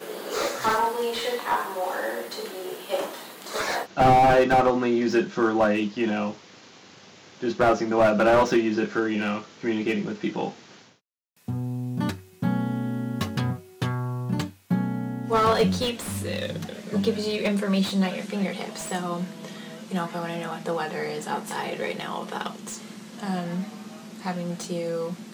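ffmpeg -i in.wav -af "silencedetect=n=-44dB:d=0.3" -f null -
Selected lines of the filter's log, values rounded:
silence_start: 10.88
silence_end: 11.48 | silence_duration: 0.60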